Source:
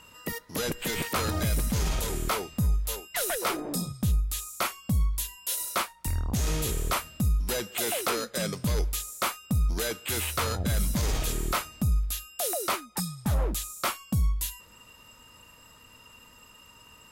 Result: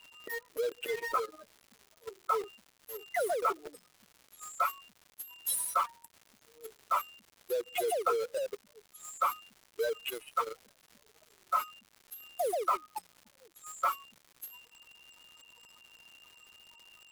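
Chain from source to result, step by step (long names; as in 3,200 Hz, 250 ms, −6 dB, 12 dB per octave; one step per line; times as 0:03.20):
expanding power law on the bin magnitudes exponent 2.9
Chebyshev high-pass filter 420 Hz, order 4
in parallel at −4.5 dB: bit reduction 6 bits
on the sum: surface crackle 240 per second −41 dBFS
level −4 dB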